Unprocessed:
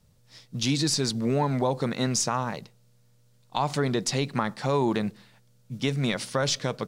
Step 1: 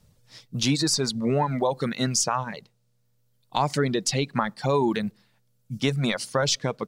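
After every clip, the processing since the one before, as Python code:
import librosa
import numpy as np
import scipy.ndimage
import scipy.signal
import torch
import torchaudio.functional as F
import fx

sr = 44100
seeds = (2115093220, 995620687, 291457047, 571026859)

y = fx.dereverb_blind(x, sr, rt60_s=1.8)
y = y * 10.0 ** (3.0 / 20.0)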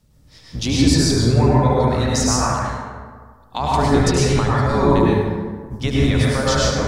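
y = fx.octave_divider(x, sr, octaves=1, level_db=1.0)
y = fx.echo_feedback(y, sr, ms=74, feedback_pct=55, wet_db=-10.0)
y = fx.rev_plate(y, sr, seeds[0], rt60_s=1.6, hf_ratio=0.4, predelay_ms=90, drr_db=-6.0)
y = y * 10.0 ** (-1.0 / 20.0)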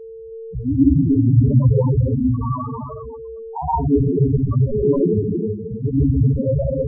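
y = x + 10.0 ** (-36.0 / 20.0) * np.sin(2.0 * np.pi * 450.0 * np.arange(len(x)) / sr)
y = y + 10.0 ** (-7.0 / 20.0) * np.pad(y, (int(318 * sr / 1000.0), 0))[:len(y)]
y = fx.spec_topn(y, sr, count=4)
y = y * 10.0 ** (3.0 / 20.0)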